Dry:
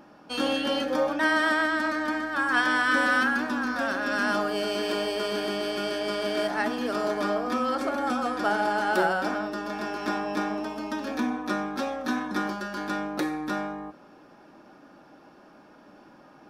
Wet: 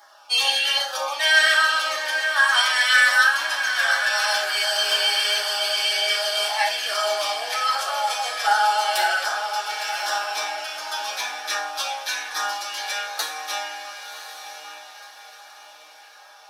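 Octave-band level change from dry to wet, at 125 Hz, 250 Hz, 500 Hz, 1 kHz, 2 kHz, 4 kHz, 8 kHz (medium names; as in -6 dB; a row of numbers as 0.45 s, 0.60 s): under -30 dB, under -25 dB, -2.5 dB, +4.5 dB, +7.5 dB, +14.0 dB, +16.0 dB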